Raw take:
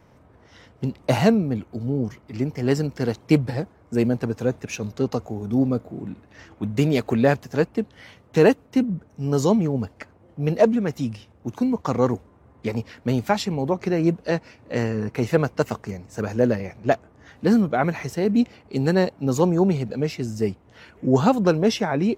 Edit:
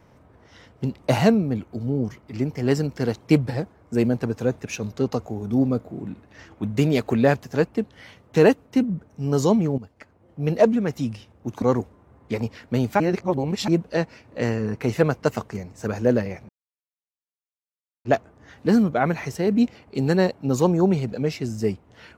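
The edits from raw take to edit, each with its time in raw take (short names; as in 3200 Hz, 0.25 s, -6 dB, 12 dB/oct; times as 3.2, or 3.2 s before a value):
9.78–10.54 fade in, from -15 dB
11.62–11.96 cut
13.34–14.02 reverse
16.83 insert silence 1.56 s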